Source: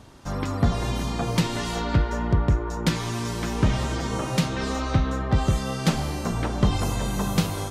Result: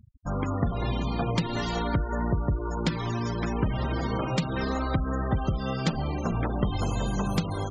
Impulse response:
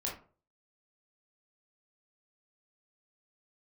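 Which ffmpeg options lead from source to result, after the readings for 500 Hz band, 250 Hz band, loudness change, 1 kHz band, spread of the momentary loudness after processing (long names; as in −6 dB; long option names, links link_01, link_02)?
−2.0 dB, −2.5 dB, −3.5 dB, −2.0 dB, 2 LU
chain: -af "acompressor=threshold=-22dB:ratio=6,afftfilt=real='re*gte(hypot(re,im),0.0282)':imag='im*gte(hypot(re,im),0.0282)':win_size=1024:overlap=0.75"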